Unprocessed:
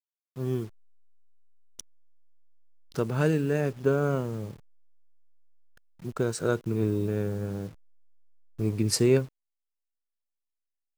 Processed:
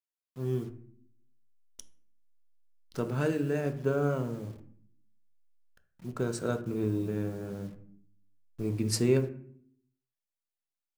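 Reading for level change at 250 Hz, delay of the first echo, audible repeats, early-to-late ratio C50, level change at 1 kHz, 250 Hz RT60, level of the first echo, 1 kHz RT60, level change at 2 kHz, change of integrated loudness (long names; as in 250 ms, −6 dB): −3.0 dB, no echo audible, no echo audible, 13.0 dB, −3.0 dB, 0.95 s, no echo audible, 0.55 s, −4.5 dB, −3.5 dB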